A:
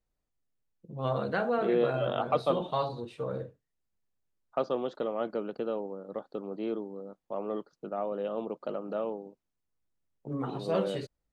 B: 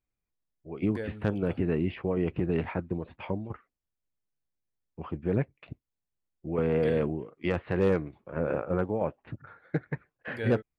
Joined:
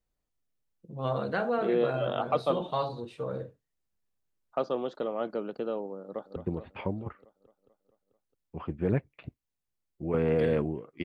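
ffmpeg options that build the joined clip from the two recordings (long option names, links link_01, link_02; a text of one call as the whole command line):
ffmpeg -i cue0.wav -i cue1.wav -filter_complex "[0:a]apad=whole_dur=11.04,atrim=end=11.04,atrim=end=6.362[link_01];[1:a]atrim=start=2.798:end=7.48[link_02];[link_01][link_02]acrossfade=duration=0.004:curve1=hsin:curve2=hsin,asplit=2[link_03][link_04];[link_04]afade=type=in:start_time=6.03:duration=0.01,afade=type=out:start_time=6.36:duration=0.01,aecho=0:1:220|440|660|880|1100|1320|1540|1760|1980:0.334965|0.217728|0.141523|0.0919899|0.0597934|0.0388657|0.0252627|0.0164208|0.0106735[link_05];[link_03][link_05]amix=inputs=2:normalize=0" out.wav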